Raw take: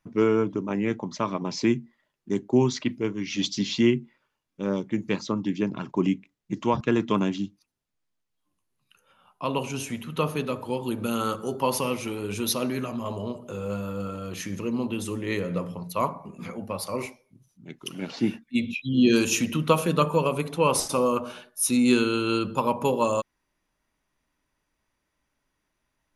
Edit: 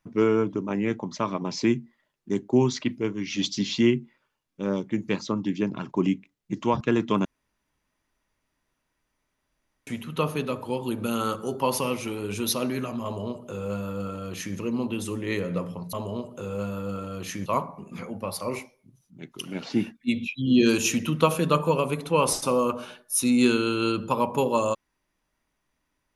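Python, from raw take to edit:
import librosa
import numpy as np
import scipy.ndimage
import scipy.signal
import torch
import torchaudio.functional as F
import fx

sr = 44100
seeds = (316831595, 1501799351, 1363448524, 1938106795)

y = fx.edit(x, sr, fx.room_tone_fill(start_s=7.25, length_s=2.62),
    fx.duplicate(start_s=13.04, length_s=1.53, to_s=15.93), tone=tone)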